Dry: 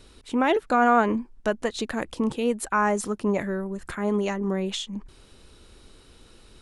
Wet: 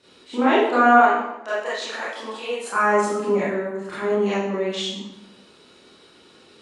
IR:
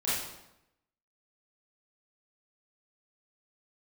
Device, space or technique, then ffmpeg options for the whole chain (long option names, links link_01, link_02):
supermarket ceiling speaker: -filter_complex "[0:a]asplit=3[link_01][link_02][link_03];[link_01]afade=type=out:start_time=0.93:duration=0.02[link_04];[link_02]highpass=630,afade=type=in:start_time=0.93:duration=0.02,afade=type=out:start_time=2.68:duration=0.02[link_05];[link_03]afade=type=in:start_time=2.68:duration=0.02[link_06];[link_04][link_05][link_06]amix=inputs=3:normalize=0,highpass=230,lowpass=6400[link_07];[1:a]atrim=start_sample=2205[link_08];[link_07][link_08]afir=irnorm=-1:irlink=0,volume=-3dB"